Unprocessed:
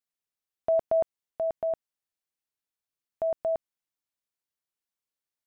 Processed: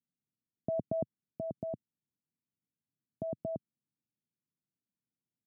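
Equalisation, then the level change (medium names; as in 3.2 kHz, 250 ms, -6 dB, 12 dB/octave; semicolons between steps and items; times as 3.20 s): Butterworth band-pass 170 Hz, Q 1.1; +13.5 dB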